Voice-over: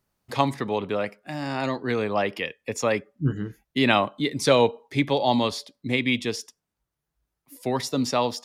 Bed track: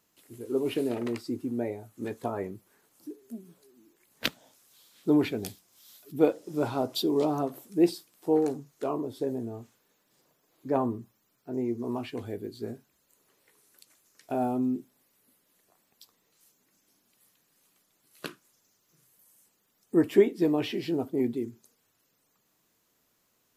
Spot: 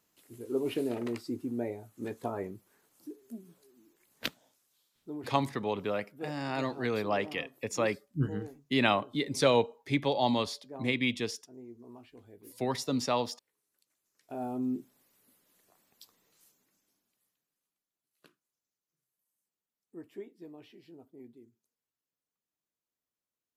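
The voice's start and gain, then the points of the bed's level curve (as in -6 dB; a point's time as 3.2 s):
4.95 s, -6.0 dB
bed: 4.1 s -3 dB
5.04 s -18 dB
13.88 s -18 dB
14.88 s -0.5 dB
16.4 s -0.5 dB
17.78 s -23.5 dB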